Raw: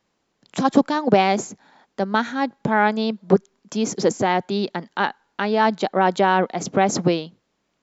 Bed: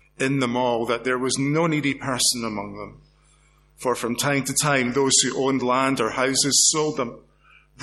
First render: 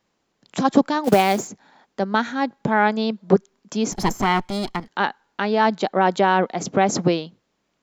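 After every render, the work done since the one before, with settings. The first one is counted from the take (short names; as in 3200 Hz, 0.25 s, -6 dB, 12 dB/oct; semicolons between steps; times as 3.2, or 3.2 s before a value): 1.04–1.48 short-mantissa float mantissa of 2-bit; 3.92–4.88 minimum comb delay 0.95 ms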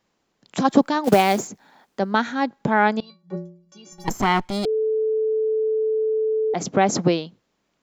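0.58–2.12 requantised 12-bit, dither none; 3–4.08 metallic resonator 170 Hz, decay 0.58 s, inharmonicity 0.03; 4.65–6.54 bleep 437 Hz -18.5 dBFS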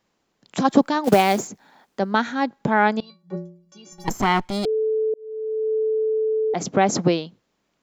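5.14–5.75 fade in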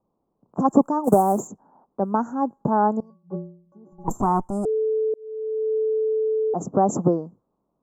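elliptic band-stop 1100–7600 Hz, stop band 50 dB; low-pass opened by the level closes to 980 Hz, open at -20 dBFS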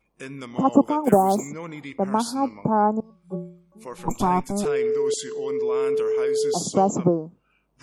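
add bed -14.5 dB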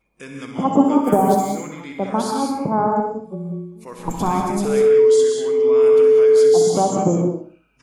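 feedback echo 64 ms, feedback 40%, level -9 dB; non-linear reverb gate 0.22 s rising, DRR 1.5 dB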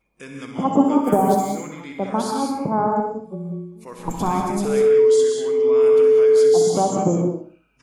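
gain -1.5 dB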